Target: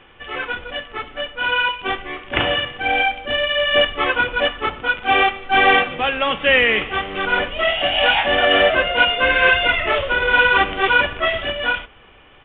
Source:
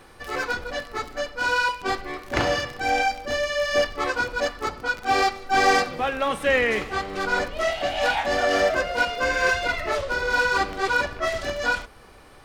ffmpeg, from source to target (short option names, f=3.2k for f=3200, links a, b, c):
-af "lowpass=f=3k:t=q:w=3.6,aresample=8000,acrusher=bits=5:mode=log:mix=0:aa=0.000001,aresample=44100,dynaudnorm=f=120:g=21:m=11.5dB,volume=-1dB" -ar 8000 -c:a pcm_alaw